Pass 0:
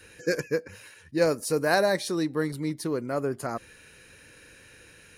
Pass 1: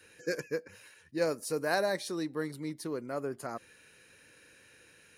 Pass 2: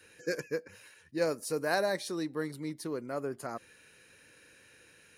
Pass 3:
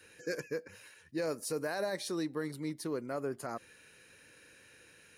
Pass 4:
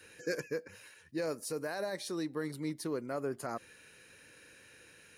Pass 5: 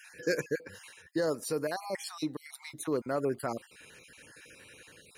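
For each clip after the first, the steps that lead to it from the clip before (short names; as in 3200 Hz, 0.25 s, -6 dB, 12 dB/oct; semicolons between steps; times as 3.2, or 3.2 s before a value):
HPF 160 Hz 6 dB/oct; gain -6.5 dB
nothing audible
limiter -26 dBFS, peak gain reduction 10.5 dB
vocal rider 0.5 s
random spectral dropouts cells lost 30%; gain +5.5 dB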